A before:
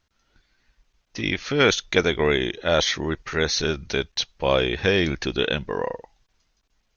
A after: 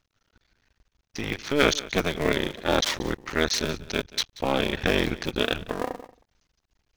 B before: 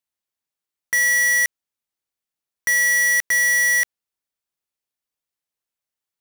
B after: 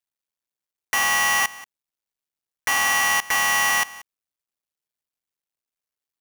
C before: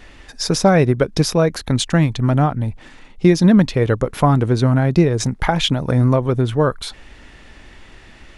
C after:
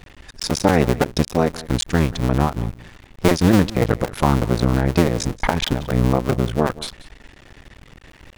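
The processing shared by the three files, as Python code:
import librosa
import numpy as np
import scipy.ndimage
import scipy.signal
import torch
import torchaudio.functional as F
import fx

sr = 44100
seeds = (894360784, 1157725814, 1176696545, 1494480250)

y = fx.cycle_switch(x, sr, every=2, mode='muted')
y = y + 10.0 ** (-19.0 / 20.0) * np.pad(y, (int(183 * sr / 1000.0), 0))[:len(y)]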